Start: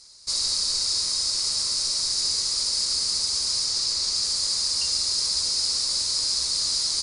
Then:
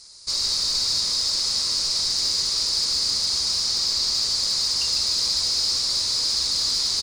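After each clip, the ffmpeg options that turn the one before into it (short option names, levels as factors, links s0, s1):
-filter_complex "[0:a]acrossover=split=6800[s0][s1];[s1]acompressor=threshold=0.00447:ratio=4:attack=1:release=60[s2];[s0][s2]amix=inputs=2:normalize=0,asplit=2[s3][s4];[s4]volume=15,asoftclip=hard,volume=0.0668,volume=0.473[s5];[s3][s5]amix=inputs=2:normalize=0,asplit=9[s6][s7][s8][s9][s10][s11][s12][s13][s14];[s7]adelay=152,afreqshift=-130,volume=0.355[s15];[s8]adelay=304,afreqshift=-260,volume=0.219[s16];[s9]adelay=456,afreqshift=-390,volume=0.136[s17];[s10]adelay=608,afreqshift=-520,volume=0.0841[s18];[s11]adelay=760,afreqshift=-650,volume=0.0525[s19];[s12]adelay=912,afreqshift=-780,volume=0.0324[s20];[s13]adelay=1064,afreqshift=-910,volume=0.0202[s21];[s14]adelay=1216,afreqshift=-1040,volume=0.0124[s22];[s6][s15][s16][s17][s18][s19][s20][s21][s22]amix=inputs=9:normalize=0"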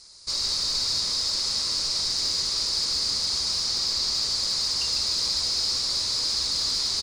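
-af "highshelf=f=4600:g=-5.5"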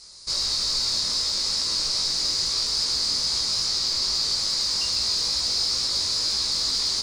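-filter_complex "[0:a]asplit=2[s0][s1];[s1]alimiter=limit=0.075:level=0:latency=1,volume=1.12[s2];[s0][s2]amix=inputs=2:normalize=0,flanger=delay=18:depth=3:speed=2.4"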